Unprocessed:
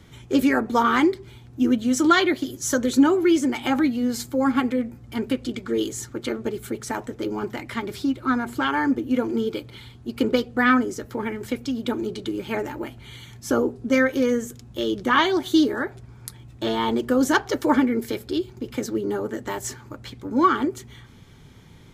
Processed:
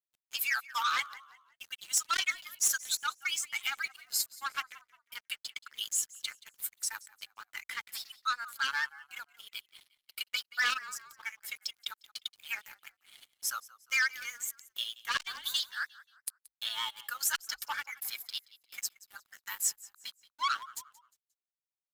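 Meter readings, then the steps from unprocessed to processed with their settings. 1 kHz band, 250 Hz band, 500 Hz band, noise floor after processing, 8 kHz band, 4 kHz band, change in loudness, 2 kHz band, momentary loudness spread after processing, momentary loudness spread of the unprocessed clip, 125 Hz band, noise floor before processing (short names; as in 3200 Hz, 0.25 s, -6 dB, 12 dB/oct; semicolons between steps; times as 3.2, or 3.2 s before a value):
-13.0 dB, under -40 dB, -40.0 dB, under -85 dBFS, +1.5 dB, -2.5 dB, -11.0 dB, -6.0 dB, 16 LU, 13 LU, under -35 dB, -47 dBFS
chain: per-bin expansion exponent 1.5; steep high-pass 1200 Hz 36 dB/oct; high shelf 7500 Hz +9.5 dB; notch 6100 Hz, Q 26; in parallel at +3 dB: compressor, threshold -40 dBFS, peak gain reduction 23 dB; on the sum: crossover distortion -46.5 dBFS; vibrato 8.4 Hz 40 cents; hard clip -20.5 dBFS, distortion -9 dB; on a send: frequency-shifting echo 0.177 s, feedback 34%, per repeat -52 Hz, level -20.5 dB; on the sum: core saturation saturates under 2500 Hz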